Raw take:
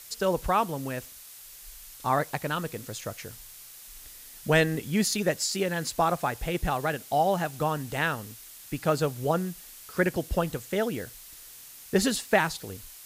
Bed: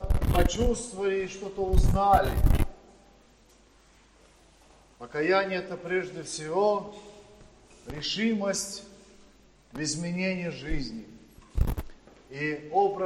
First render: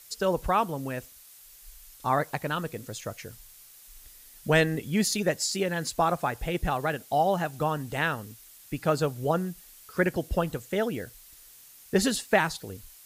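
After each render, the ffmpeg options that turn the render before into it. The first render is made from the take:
ffmpeg -i in.wav -af "afftdn=noise_reduction=6:noise_floor=-47" out.wav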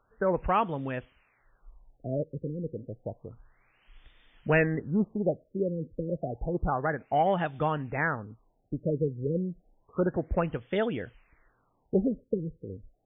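ffmpeg -i in.wav -af "asoftclip=type=tanh:threshold=-13dB,afftfilt=real='re*lt(b*sr/1024,540*pow(3700/540,0.5+0.5*sin(2*PI*0.3*pts/sr)))':imag='im*lt(b*sr/1024,540*pow(3700/540,0.5+0.5*sin(2*PI*0.3*pts/sr)))':win_size=1024:overlap=0.75" out.wav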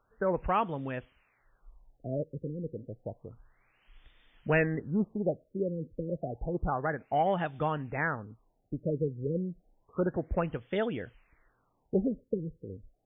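ffmpeg -i in.wav -af "volume=-2.5dB" out.wav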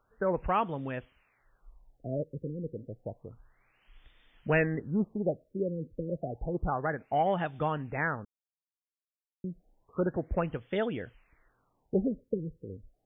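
ffmpeg -i in.wav -filter_complex "[0:a]asplit=3[link_01][link_02][link_03];[link_01]atrim=end=8.25,asetpts=PTS-STARTPTS,afade=type=out:start_time=8.246:duration=0.004:curve=hsin[link_04];[link_02]atrim=start=8.25:end=9.44,asetpts=PTS-STARTPTS,volume=0[link_05];[link_03]atrim=start=9.44,asetpts=PTS-STARTPTS,afade=type=in:duration=0.004:curve=hsin[link_06];[link_04][link_05][link_06]concat=n=3:v=0:a=1" out.wav

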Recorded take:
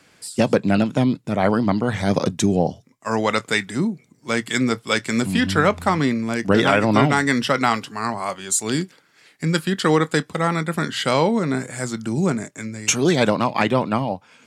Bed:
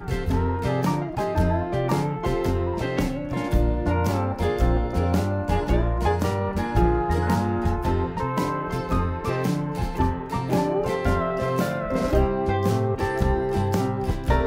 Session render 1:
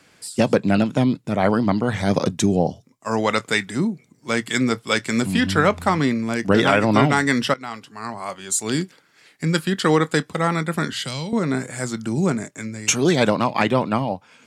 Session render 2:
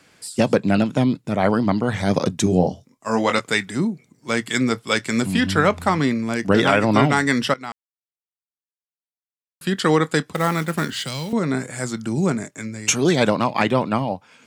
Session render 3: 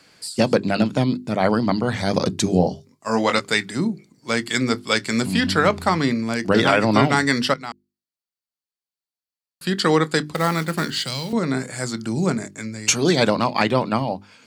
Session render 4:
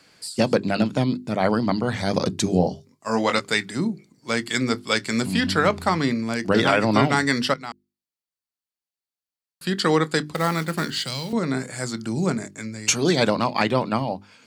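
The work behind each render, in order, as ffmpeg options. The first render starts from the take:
ffmpeg -i in.wav -filter_complex "[0:a]asettb=1/sr,asplit=3[link_01][link_02][link_03];[link_01]atrim=end=2.494[link_04];[link_02]atrim=start=2.49:end=3.18,asetpts=PTS-STARTPTS,afade=type=in:duration=0.004:curve=qsin,afade=type=out:start_time=0.686:duration=0.004:curve=qsin,equalizer=frequency=1900:width_type=o:width=0.77:gain=-5.5[link_05];[link_03]atrim=start=3.176[link_06];[link_04][link_05]acrossfade=duration=0.004:curve1=hsin:curve2=qsin[link_07];[link_07][link_06]acrossfade=duration=0.004:curve1=qsin:curve2=hsin,asettb=1/sr,asplit=3[link_08][link_09][link_10];[link_08]atrim=end=10.924[link_11];[link_09]atrim=start=10.92:end=11.33,asetpts=PTS-STARTPTS,afade=type=in:duration=0.004:curve=qsin,afade=type=out:start_time=0.406:duration=0.004:curve=qsin,acrossover=split=170|3000[link_12][link_13][link_14];[link_13]acompressor=threshold=-34dB:ratio=5:attack=3.2:release=140:knee=2.83:detection=peak[link_15];[link_12][link_15][link_14]amix=inputs=3:normalize=0[link_16];[link_10]atrim=start=11.326[link_17];[link_11][link_16]acrossfade=duration=0.004:curve1=hsin:curve2=qsin[link_18];[link_18][link_17]acrossfade=duration=0.004:curve1=qsin:curve2=hsin,asplit=2[link_19][link_20];[link_19]atrim=end=7.54,asetpts=PTS-STARTPTS,afade=type=out:start_time=7.536:duration=0.004:curve=hsin:silence=0.112202[link_21];[link_20]atrim=start=7.54,asetpts=PTS-STARTPTS,afade=type=in:duration=1.24:silence=0.112202[link_22];[link_21][link_22]concat=n=2:v=0:a=1" out.wav
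ffmpeg -i in.wav -filter_complex "[0:a]asettb=1/sr,asplit=3[link_01][link_02][link_03];[link_01]atrim=end=2.444[link_04];[link_02]atrim=start=2.44:end=3.4,asetpts=PTS-STARTPTS,afade=type=in:duration=0.004:curve=qsin,afade=type=out:start_time=0.956:duration=0.004:curve=qsin,asplit=2[link_05][link_06];[link_06]adelay=22,volume=-5.5dB[link_07];[link_05][link_07]amix=inputs=2:normalize=0,atrim=end_sample=42336[link_08];[link_03]atrim=start=3.396[link_09];[link_04][link_08]acrossfade=duration=0.004:curve1=hsin:curve2=qsin[link_10];[link_10][link_09]acrossfade=duration=0.004:curve1=qsin:curve2=hsin,asettb=1/sr,asplit=3[link_11][link_12][link_13];[link_11]atrim=end=10.354[link_14];[link_12]atrim=start=10.35:end=11.33,asetpts=PTS-STARTPTS,afade=type=in:duration=0.004:curve=qsin,afade=type=out:start_time=0.976:duration=0.004:curve=qsin,acrusher=bits=4:mode=log:mix=0:aa=0.000001[link_15];[link_13]atrim=start=11.326[link_16];[link_14][link_15]acrossfade=duration=0.004:curve1=hsin:curve2=qsin[link_17];[link_17][link_16]acrossfade=duration=0.004:curve1=qsin:curve2=hsin,asplit=3[link_18][link_19][link_20];[link_18]atrim=end=7.72,asetpts=PTS-STARTPTS,afade=type=out:start_time=7.716:duration=0.004:curve=hsin[link_21];[link_19]atrim=start=7.72:end=9.61,asetpts=PTS-STARTPTS,volume=0[link_22];[link_20]atrim=start=9.61,asetpts=PTS-STARTPTS,afade=type=in:duration=0.004:curve=hsin[link_23];[link_21][link_22][link_23]concat=n=3:v=0:a=1" out.wav
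ffmpeg -i in.wav -af "equalizer=frequency=4500:width_type=o:width=0.25:gain=9.5,bandreject=frequency=50:width_type=h:width=6,bandreject=frequency=100:width_type=h:width=6,bandreject=frequency=150:width_type=h:width=6,bandreject=frequency=200:width_type=h:width=6,bandreject=frequency=250:width_type=h:width=6,bandreject=frequency=300:width_type=h:width=6,bandreject=frequency=350:width_type=h:width=6,bandreject=frequency=400:width_type=h:width=6" out.wav
ffmpeg -i in.wav -af "volume=-2dB" out.wav

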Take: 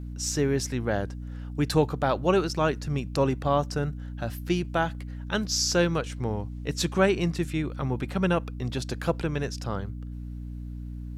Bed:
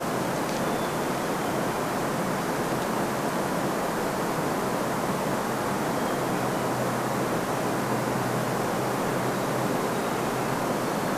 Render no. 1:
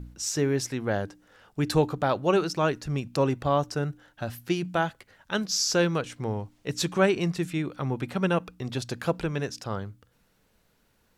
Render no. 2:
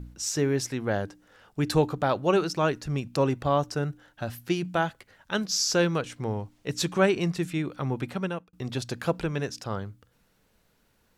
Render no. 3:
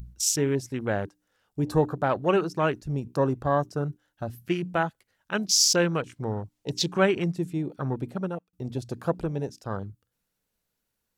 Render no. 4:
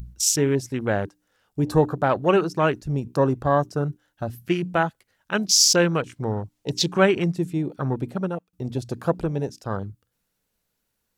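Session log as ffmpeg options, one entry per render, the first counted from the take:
ffmpeg -i in.wav -af "bandreject=frequency=60:width_type=h:width=4,bandreject=frequency=120:width_type=h:width=4,bandreject=frequency=180:width_type=h:width=4,bandreject=frequency=240:width_type=h:width=4,bandreject=frequency=300:width_type=h:width=4" out.wav
ffmpeg -i in.wav -filter_complex "[0:a]asplit=2[link_01][link_02];[link_01]atrim=end=8.53,asetpts=PTS-STARTPTS,afade=type=out:start_time=8.04:duration=0.49[link_03];[link_02]atrim=start=8.53,asetpts=PTS-STARTPTS,afade=type=in:duration=0.004:curve=hsin[link_04];[link_03][link_04]concat=n=2:v=0:a=1" out.wav
ffmpeg -i in.wav -af "afwtdn=0.0178,highshelf=frequency=4900:gain=11" out.wav
ffmpeg -i in.wav -af "volume=4dB" out.wav

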